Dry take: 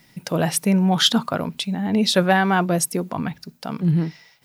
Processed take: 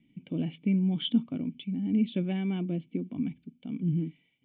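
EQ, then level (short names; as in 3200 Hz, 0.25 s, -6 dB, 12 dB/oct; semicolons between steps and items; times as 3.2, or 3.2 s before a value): vocal tract filter i; 0.0 dB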